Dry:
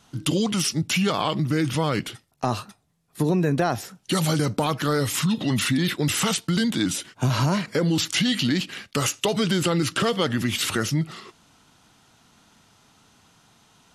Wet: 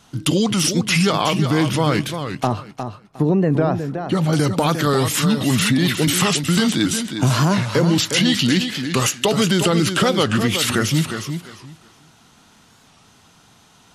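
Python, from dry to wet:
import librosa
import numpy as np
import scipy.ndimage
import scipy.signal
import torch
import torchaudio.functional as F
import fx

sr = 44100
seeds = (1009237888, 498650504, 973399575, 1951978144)

y = fx.lowpass(x, sr, hz=1000.0, slope=6, at=(2.47, 4.33))
y = fx.echo_feedback(y, sr, ms=358, feedback_pct=20, wet_db=-8)
y = fx.record_warp(y, sr, rpm=45.0, depth_cents=160.0)
y = y * librosa.db_to_amplitude(5.0)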